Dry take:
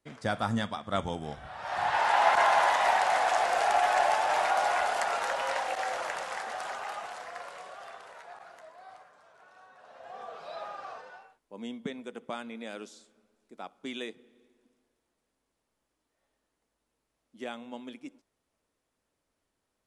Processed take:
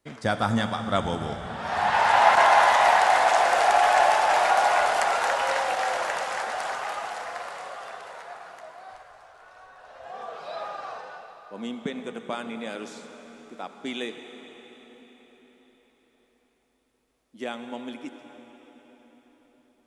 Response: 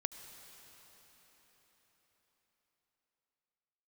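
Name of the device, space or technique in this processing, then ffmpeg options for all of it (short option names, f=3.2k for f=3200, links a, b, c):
cathedral: -filter_complex "[1:a]atrim=start_sample=2205[a];[0:a][a]afir=irnorm=-1:irlink=0,asplit=3[b][c][d];[b]afade=t=out:st=8.91:d=0.02[e];[c]asubboost=boost=11.5:cutoff=55,afade=t=in:st=8.91:d=0.02,afade=t=out:st=10.05:d=0.02[f];[d]afade=t=in:st=10.05:d=0.02[g];[e][f][g]amix=inputs=3:normalize=0,volume=6.5dB"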